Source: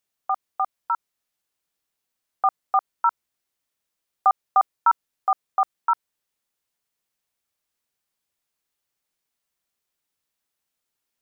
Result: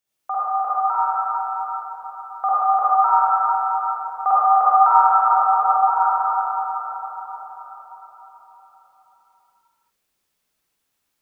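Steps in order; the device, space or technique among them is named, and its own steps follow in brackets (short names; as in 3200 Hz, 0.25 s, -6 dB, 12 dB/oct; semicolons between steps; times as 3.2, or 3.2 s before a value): 5.3–5.92 LPF 1200 Hz 12 dB/oct; cathedral (reverb RT60 5.1 s, pre-delay 43 ms, DRR -11.5 dB); gain -3 dB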